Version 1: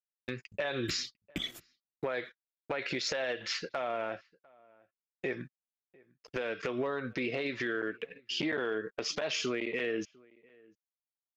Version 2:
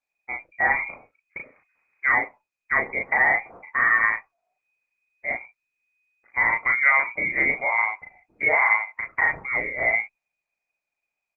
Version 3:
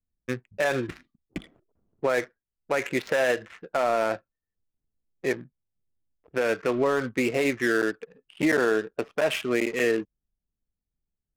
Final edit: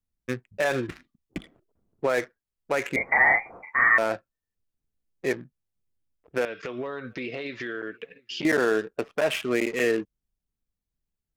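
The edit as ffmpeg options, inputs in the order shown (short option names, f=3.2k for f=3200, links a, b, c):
-filter_complex "[2:a]asplit=3[a][b][c];[a]atrim=end=2.962[d];[1:a]atrim=start=2.958:end=3.982[e];[b]atrim=start=3.978:end=6.452[f];[0:a]atrim=start=6.448:end=8.452[g];[c]atrim=start=8.448[h];[d][e]acrossfade=d=0.004:c1=hsin:c2=hsin[i];[i][f]acrossfade=d=0.004:c1=hsin:c2=hsin[j];[j][g]acrossfade=d=0.004:c1=hsin:c2=hsin[k];[k][h]acrossfade=d=0.004:c1=hsin:c2=hsin"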